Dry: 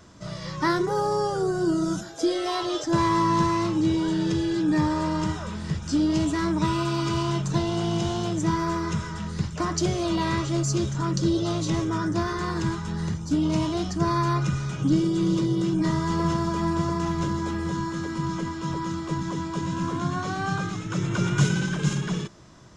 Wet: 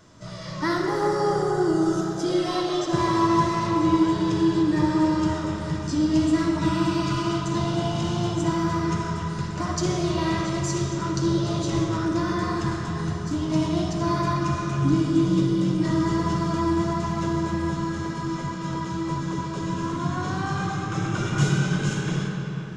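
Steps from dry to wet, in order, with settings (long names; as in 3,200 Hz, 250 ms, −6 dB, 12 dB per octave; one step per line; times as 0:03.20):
flanger 1.4 Hz, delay 6.1 ms, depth 4.1 ms, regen −47%
convolution reverb RT60 3.9 s, pre-delay 15 ms, DRR 0 dB
level +2 dB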